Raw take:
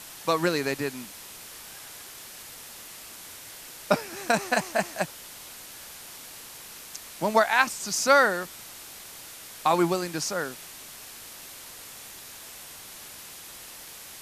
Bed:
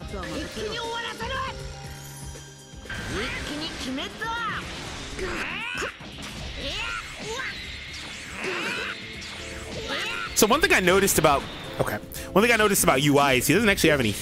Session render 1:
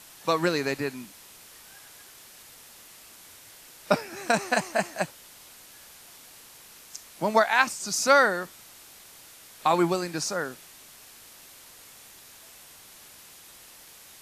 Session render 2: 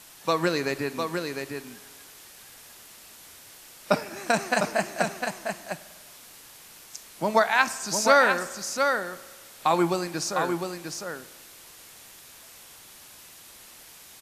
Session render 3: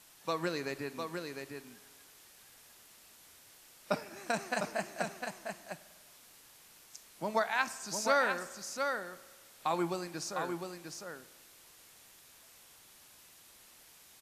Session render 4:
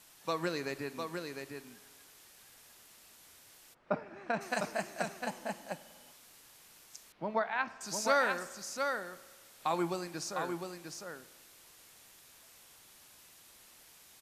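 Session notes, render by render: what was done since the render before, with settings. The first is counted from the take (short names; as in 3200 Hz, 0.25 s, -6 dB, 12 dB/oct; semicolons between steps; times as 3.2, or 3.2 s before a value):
noise print and reduce 6 dB
echo 0.704 s -5.5 dB; spring tank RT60 1.5 s, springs 49 ms, chirp 45 ms, DRR 16.5 dB
gain -10 dB
3.73–4.4 LPF 1300 Hz -> 2600 Hz; 5.24–6.12 small resonant body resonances 250/510/840/3000 Hz, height 11 dB; 7.12–7.81 air absorption 330 m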